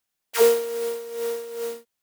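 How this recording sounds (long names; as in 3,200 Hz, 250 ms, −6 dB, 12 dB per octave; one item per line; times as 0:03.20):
background noise floor −81 dBFS
spectral slope −0.5 dB per octave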